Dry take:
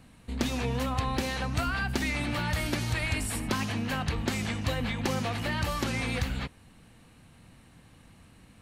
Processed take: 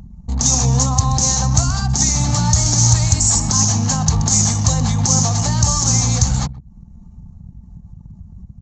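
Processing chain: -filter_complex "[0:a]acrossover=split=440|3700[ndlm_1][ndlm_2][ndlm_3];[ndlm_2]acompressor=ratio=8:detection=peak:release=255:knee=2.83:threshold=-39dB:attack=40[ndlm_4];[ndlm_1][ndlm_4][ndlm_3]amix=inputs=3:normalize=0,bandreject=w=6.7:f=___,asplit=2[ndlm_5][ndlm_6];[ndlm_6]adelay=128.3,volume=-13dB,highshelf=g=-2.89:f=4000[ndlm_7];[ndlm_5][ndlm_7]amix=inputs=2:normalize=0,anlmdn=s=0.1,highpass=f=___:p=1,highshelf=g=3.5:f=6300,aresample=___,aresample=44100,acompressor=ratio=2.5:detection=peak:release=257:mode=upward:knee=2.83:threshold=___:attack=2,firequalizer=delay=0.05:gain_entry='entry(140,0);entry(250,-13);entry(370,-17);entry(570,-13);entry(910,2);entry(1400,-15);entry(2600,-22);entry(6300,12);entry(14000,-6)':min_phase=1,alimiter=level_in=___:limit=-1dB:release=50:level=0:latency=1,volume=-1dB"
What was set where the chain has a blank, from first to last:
960, 100, 16000, -40dB, 21.5dB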